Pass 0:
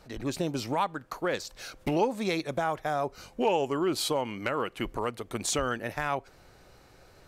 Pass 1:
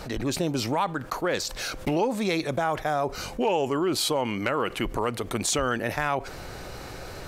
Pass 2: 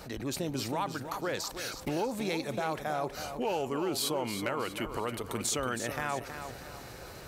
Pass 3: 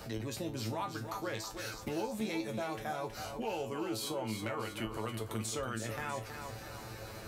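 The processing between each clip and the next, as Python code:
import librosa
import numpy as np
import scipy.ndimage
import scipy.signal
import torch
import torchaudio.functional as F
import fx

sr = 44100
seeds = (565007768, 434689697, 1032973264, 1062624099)

y1 = fx.env_flatten(x, sr, amount_pct=50)
y2 = scipy.signal.sosfilt(scipy.signal.butter(2, 42.0, 'highpass', fs=sr, output='sos'), y1)
y2 = fx.high_shelf(y2, sr, hz=11000.0, db=9.5)
y2 = fx.echo_feedback(y2, sr, ms=321, feedback_pct=41, wet_db=-9.0)
y2 = y2 * 10.0 ** (-7.5 / 20.0)
y3 = fx.low_shelf(y2, sr, hz=110.0, db=7.5)
y3 = fx.comb_fb(y3, sr, f0_hz=110.0, decay_s=0.2, harmonics='all', damping=0.0, mix_pct=90)
y3 = fx.band_squash(y3, sr, depth_pct=40)
y3 = y3 * 10.0 ** (2.0 / 20.0)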